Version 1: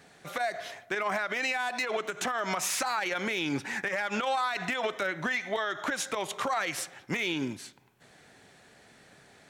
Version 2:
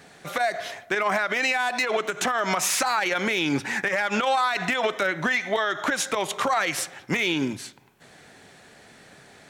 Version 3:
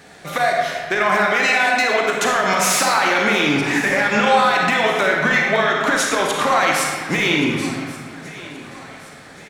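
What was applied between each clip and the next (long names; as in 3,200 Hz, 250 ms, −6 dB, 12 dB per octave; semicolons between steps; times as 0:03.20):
mains-hum notches 60/120 Hz; level +6.5 dB
repeating echo 1,126 ms, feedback 48%, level −18 dB; convolution reverb RT60 1.7 s, pre-delay 33 ms, DRR −1 dB; level +4 dB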